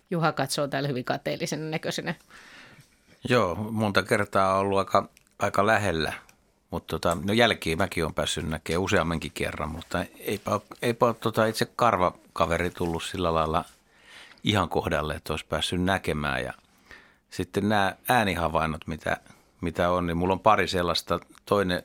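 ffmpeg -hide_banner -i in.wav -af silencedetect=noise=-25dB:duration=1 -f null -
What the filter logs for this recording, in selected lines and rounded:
silence_start: 2.11
silence_end: 3.25 | silence_duration: 1.14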